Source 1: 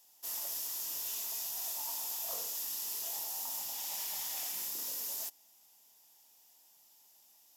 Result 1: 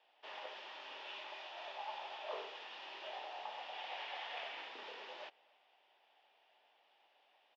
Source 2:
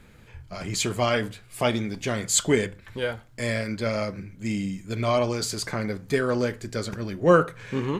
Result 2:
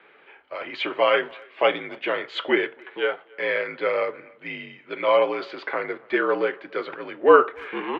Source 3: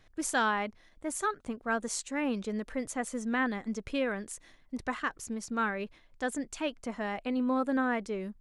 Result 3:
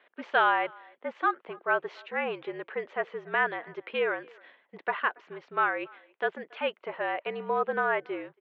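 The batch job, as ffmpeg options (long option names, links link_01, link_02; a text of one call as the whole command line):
ffmpeg -i in.wav -filter_complex "[0:a]highpass=frequency=450:width_type=q:width=0.5412,highpass=frequency=450:width_type=q:width=1.307,lowpass=frequency=3200:width_type=q:width=0.5176,lowpass=frequency=3200:width_type=q:width=0.7071,lowpass=frequency=3200:width_type=q:width=1.932,afreqshift=-55,asplit=2[link_01][link_02];[link_02]adelay=280,highpass=300,lowpass=3400,asoftclip=type=hard:threshold=-16dB,volume=-26dB[link_03];[link_01][link_03]amix=inputs=2:normalize=0,volume=5.5dB" out.wav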